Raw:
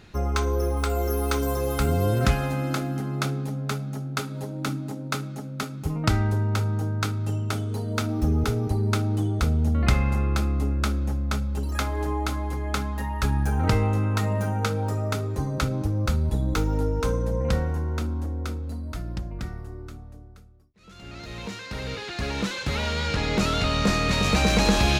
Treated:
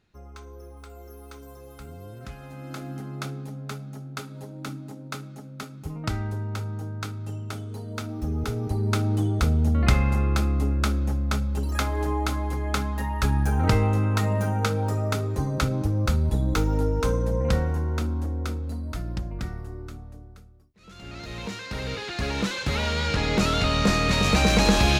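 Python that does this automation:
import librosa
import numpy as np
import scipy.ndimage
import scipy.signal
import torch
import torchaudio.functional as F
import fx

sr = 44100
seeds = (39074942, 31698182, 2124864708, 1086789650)

y = fx.gain(x, sr, db=fx.line((2.28, -19.0), (2.9, -6.5), (8.22, -6.5), (9.07, 1.0)))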